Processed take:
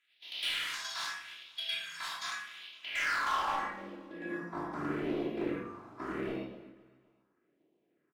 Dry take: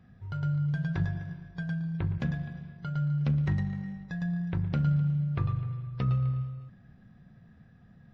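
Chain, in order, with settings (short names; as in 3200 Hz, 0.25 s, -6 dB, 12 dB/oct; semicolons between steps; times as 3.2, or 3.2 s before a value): spectral contrast lowered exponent 0.18; gate -47 dBFS, range -8 dB; spectral noise reduction 14 dB; 3.21–4.4 comb 3.6 ms, depth 78%; in parallel at -2.5 dB: compressor, threshold -43 dBFS, peak gain reduction 20.5 dB; on the sum: phaser stages 4, 0.81 Hz, lowest notch 430–1400 Hz; overdrive pedal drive 21 dB, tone 1700 Hz, clips at -13.5 dBFS; band-pass sweep 3600 Hz -> 350 Hz, 2.65–3.96; hard clip -33.5 dBFS, distortion -9 dB; on a send: feedback echo 0.255 s, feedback 47%, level -20.5 dB; on the sum: shoebox room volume 690 m³, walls furnished, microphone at 3 m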